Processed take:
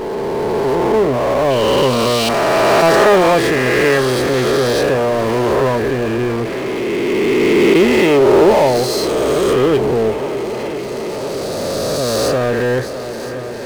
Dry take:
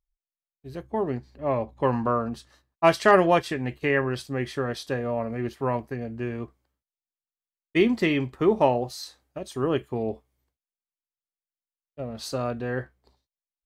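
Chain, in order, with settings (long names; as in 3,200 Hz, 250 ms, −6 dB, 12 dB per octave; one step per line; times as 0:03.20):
peak hold with a rise ahead of every peak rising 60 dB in 2.74 s
0:01.50–0:02.29: high shelf with overshoot 2,300 Hz +11 dB, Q 3
on a send: feedback echo with a long and a short gap by turns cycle 1,008 ms, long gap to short 1.5 to 1, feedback 60%, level −21 dB
on the sum: power curve on the samples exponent 0.5
parametric band 440 Hz +5.5 dB 0.66 octaves
level −4 dB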